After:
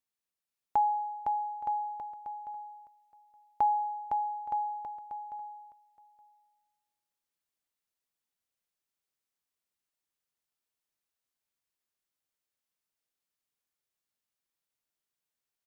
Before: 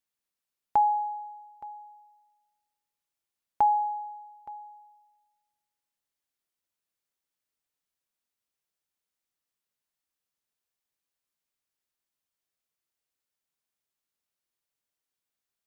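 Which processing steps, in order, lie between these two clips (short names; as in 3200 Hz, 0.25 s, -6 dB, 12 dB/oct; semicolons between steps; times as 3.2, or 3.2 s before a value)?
bouncing-ball echo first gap 0.51 s, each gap 0.8×, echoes 5; gain -4 dB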